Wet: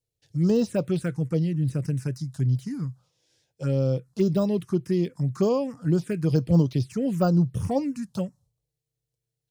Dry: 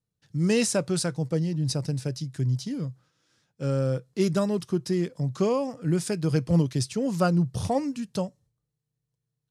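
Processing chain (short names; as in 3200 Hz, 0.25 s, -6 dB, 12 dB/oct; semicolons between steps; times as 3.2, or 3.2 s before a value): de-esser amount 100%; envelope phaser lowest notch 200 Hz, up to 2200 Hz, full sweep at -19.5 dBFS; gain +2.5 dB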